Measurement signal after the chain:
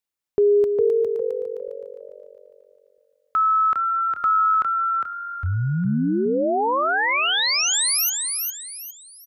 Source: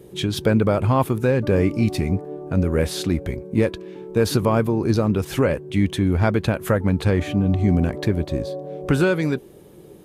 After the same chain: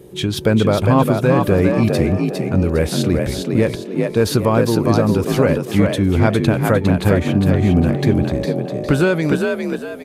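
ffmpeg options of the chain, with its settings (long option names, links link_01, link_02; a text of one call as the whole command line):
ffmpeg -i in.wav -filter_complex "[0:a]asplit=5[link_01][link_02][link_03][link_04][link_05];[link_02]adelay=406,afreqshift=47,volume=-4dB[link_06];[link_03]adelay=812,afreqshift=94,volume=-13.6dB[link_07];[link_04]adelay=1218,afreqshift=141,volume=-23.3dB[link_08];[link_05]adelay=1624,afreqshift=188,volume=-32.9dB[link_09];[link_01][link_06][link_07][link_08][link_09]amix=inputs=5:normalize=0,volume=3dB" out.wav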